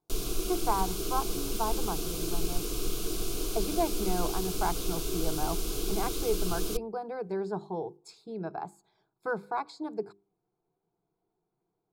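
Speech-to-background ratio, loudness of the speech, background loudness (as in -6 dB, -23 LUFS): -1.5 dB, -35.5 LUFS, -34.0 LUFS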